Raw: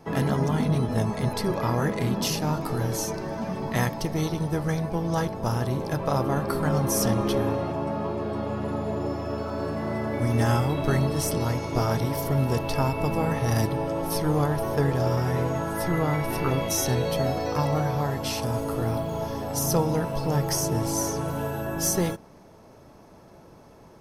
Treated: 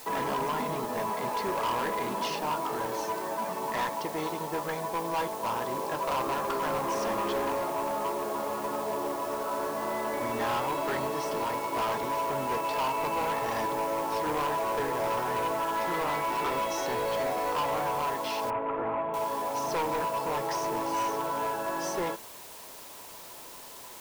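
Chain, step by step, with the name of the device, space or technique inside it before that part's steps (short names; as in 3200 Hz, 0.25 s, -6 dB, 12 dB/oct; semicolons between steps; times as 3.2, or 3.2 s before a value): drive-through speaker (BPF 410–3100 Hz; bell 1000 Hz +11 dB 0.22 oct; hard clip -26 dBFS, distortion -10 dB; white noise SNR 16 dB); 18.5–19.14 inverse Chebyshev low-pass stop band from 4800 Hz, stop band 40 dB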